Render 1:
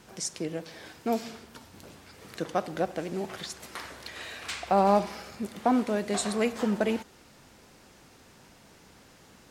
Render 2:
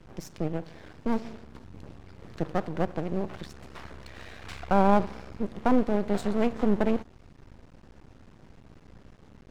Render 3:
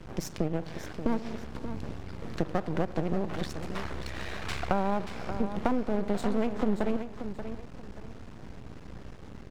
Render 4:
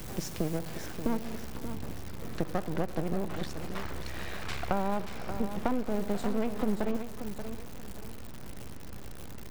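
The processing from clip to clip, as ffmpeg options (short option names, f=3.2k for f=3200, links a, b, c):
-af "aemphasis=mode=reproduction:type=riaa,aeval=exprs='max(val(0),0)':c=same"
-filter_complex "[0:a]acompressor=threshold=-30dB:ratio=6,asplit=2[a][b];[b]aecho=0:1:582|1164|1746:0.316|0.0854|0.0231[c];[a][c]amix=inputs=2:normalize=0,volume=6.5dB"
-af "aeval=exprs='val(0)+0.5*0.02*sgn(val(0))':c=same,volume=-2.5dB"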